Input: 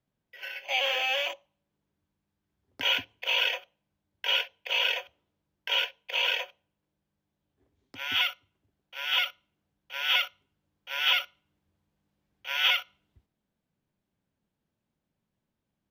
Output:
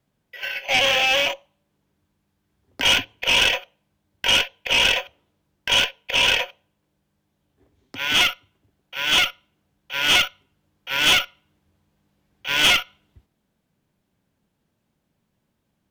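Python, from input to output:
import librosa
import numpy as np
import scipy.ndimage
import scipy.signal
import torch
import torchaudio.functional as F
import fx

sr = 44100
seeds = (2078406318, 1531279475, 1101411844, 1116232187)

y = fx.wow_flutter(x, sr, seeds[0], rate_hz=2.1, depth_cents=23.0)
y = fx.cheby_harmonics(y, sr, harmonics=(4, 5), levels_db=(-13, -16), full_scale_db=-12.0)
y = y * 10.0 ** (5.0 / 20.0)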